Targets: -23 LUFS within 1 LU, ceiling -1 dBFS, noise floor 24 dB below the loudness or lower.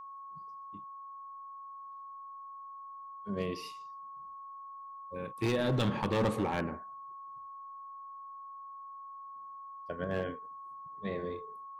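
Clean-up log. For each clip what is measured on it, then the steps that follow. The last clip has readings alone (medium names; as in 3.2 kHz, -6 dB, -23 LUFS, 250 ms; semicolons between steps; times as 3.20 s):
clipped samples 0.8%; clipping level -24.5 dBFS; steady tone 1.1 kHz; tone level -44 dBFS; loudness -38.5 LUFS; peak level -24.5 dBFS; loudness target -23.0 LUFS
-> clip repair -24.5 dBFS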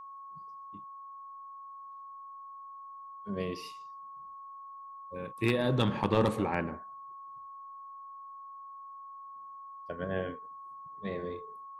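clipped samples 0.0%; steady tone 1.1 kHz; tone level -44 dBFS
-> band-stop 1.1 kHz, Q 30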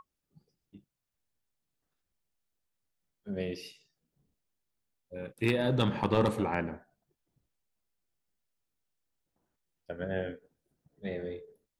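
steady tone not found; loudness -32.5 LUFS; peak level -15.0 dBFS; loudness target -23.0 LUFS
-> trim +9.5 dB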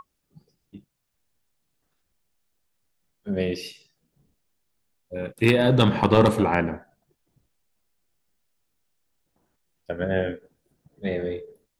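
loudness -23.0 LUFS; peak level -5.5 dBFS; noise floor -77 dBFS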